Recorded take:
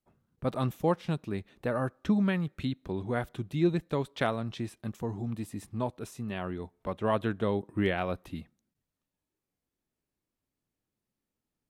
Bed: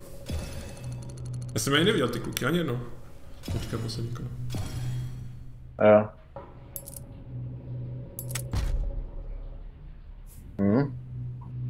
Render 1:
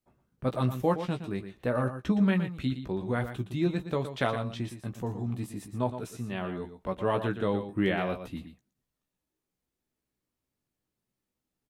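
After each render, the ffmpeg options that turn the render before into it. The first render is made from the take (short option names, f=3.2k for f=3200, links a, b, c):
-filter_complex "[0:a]asplit=2[a][b];[b]adelay=16,volume=-7dB[c];[a][c]amix=inputs=2:normalize=0,asplit=2[d][e];[e]aecho=0:1:117:0.316[f];[d][f]amix=inputs=2:normalize=0"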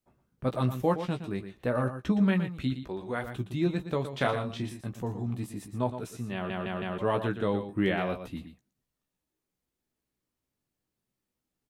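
-filter_complex "[0:a]asettb=1/sr,asplit=3[a][b][c];[a]atrim=end=2.834[d];[b]atrim=start=2.83:end=3.27,asetpts=PTS-STARTPTS,afade=t=in:d=0.004:c=qsin,afade=t=out:st=0.436:d=0.004:c=qsin,equalizer=f=130:t=o:w=2:g=-10.5[e];[c]atrim=start=3.266[f];[d][e]acrossfade=d=0.004:c1=hsin:c2=qsin[g];[g][f]acrossfade=d=0.004:c1=qsin:c2=hsin,asettb=1/sr,asplit=3[h][i][j];[h]atrim=end=4.104[k];[i]atrim=start=4.1:end=4.81,asetpts=PTS-STARTPTS,afade=t=in:d=0.004:c=qsin,afade=t=out:st=0.706:d=0.004:c=qsin,asplit=2[l][m];[m]adelay=29,volume=-6dB[n];[l][n]amix=inputs=2:normalize=0,atrim=end_sample=31311[o];[j]atrim=start=4.806[p];[k][o]acrossfade=d=0.004:c1=hsin:c2=qsin[q];[q][p]acrossfade=d=0.004:c1=qsin:c2=hsin,asplit=5[r][s][t][u][v];[r]atrim=end=6.502[w];[s]atrim=start=6.338:end=6.502[x];[t]atrim=start=6.338:end=6.502[y];[u]atrim=start=6.338:end=6.502[z];[v]atrim=start=6.978[aa];[w][x]acrossfade=d=0.004:c1=hsin:c2=hsin[ab];[ab][y]acrossfade=d=0.004:c1=hsin:c2=hsin[ac];[ac][z]acrossfade=d=0.004:c1=hsin:c2=hsin[ad];[ad][aa]acrossfade=d=0.004:c1=hsin:c2=hsin"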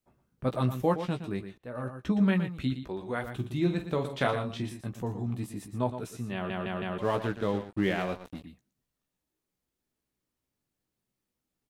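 -filter_complex "[0:a]asettb=1/sr,asplit=3[a][b][c];[a]atrim=end=3.344[d];[b]atrim=start=3.34:end=4.19,asetpts=PTS-STARTPTS,afade=t=in:d=0.004:c=qsin,afade=t=out:st=0.846:d=0.004:c=qsin,asplit=2[e][f];[f]adelay=47,volume=-9.5dB[g];[e][g]amix=inputs=2:normalize=0,atrim=end_sample=37485[h];[c]atrim=start=4.186[i];[d][h]acrossfade=d=0.004:c1=hsin:c2=qsin[j];[j][i]acrossfade=d=0.004:c1=qsin:c2=hsin,asettb=1/sr,asplit=3[k][l][m];[k]atrim=end=7.014[n];[l]atrim=start=7.01:end=8.44,asetpts=PTS-STARTPTS,afade=t=in:d=0.004:c=qsin,afade=t=out:st=1.426:d=0.004:c=qsin,aeval=exprs='sgn(val(0))*max(abs(val(0))-0.00708,0)':c=same[o];[m]atrim=start=8.436[p];[n][o]acrossfade=d=0.004:c1=hsin:c2=qsin[q];[q][p]acrossfade=d=0.004:c1=qsin:c2=hsin,asplit=2[r][s];[r]atrim=end=1.58,asetpts=PTS-STARTPTS,afade=t=out:st=1.576:d=0.004:c=hsin:silence=0.0891251[t];[s]atrim=start=1.58,asetpts=PTS-STARTPTS,afade=t=in:d=0.63:silence=0.0891251[u];[t][u]concat=n=2:v=0:a=1"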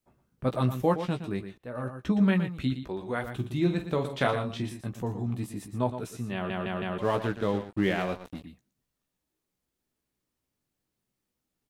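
-af "volume=1.5dB"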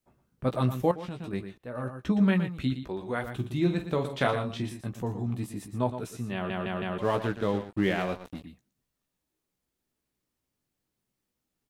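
-filter_complex "[0:a]asettb=1/sr,asplit=3[a][b][c];[a]atrim=end=0.914[d];[b]atrim=start=0.91:end=1.33,asetpts=PTS-STARTPTS,afade=t=in:d=0.004:c=qsin,afade=t=out:st=0.416:d=0.004:c=qsin,acompressor=threshold=-33dB:ratio=6:attack=3.2:release=140:knee=1:detection=peak[e];[c]atrim=start=1.326[f];[d][e]acrossfade=d=0.004:c1=hsin:c2=qsin[g];[g][f]acrossfade=d=0.004:c1=qsin:c2=hsin"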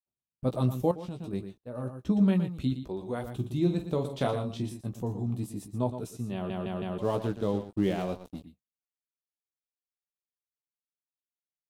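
-af "agate=range=-33dB:threshold=-39dB:ratio=3:detection=peak,equalizer=f=1.8k:w=0.98:g=-12.5"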